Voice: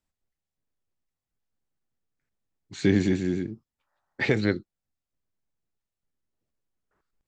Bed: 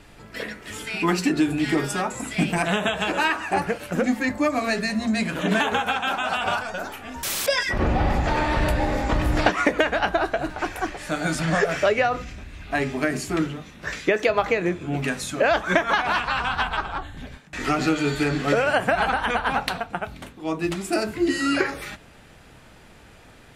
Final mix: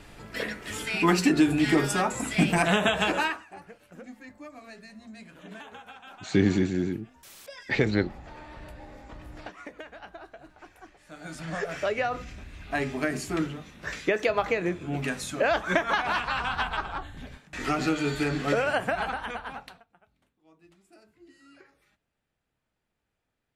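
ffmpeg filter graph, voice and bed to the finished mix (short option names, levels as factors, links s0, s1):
-filter_complex "[0:a]adelay=3500,volume=0.944[s0];[1:a]volume=7.94,afade=t=out:st=3.05:d=0.4:silence=0.0749894,afade=t=in:st=11.05:d=1.36:silence=0.125893,afade=t=out:st=18.6:d=1.25:silence=0.0375837[s1];[s0][s1]amix=inputs=2:normalize=0"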